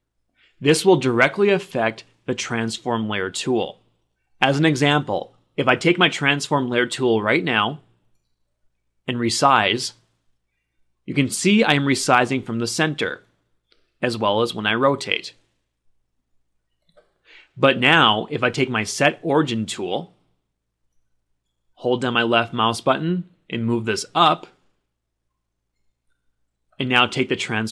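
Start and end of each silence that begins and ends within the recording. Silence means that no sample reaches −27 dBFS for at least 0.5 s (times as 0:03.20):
0:03.70–0:04.42
0:07.74–0:09.08
0:09.89–0:11.08
0:13.14–0:14.03
0:15.29–0:17.61
0:20.01–0:21.85
0:24.44–0:26.80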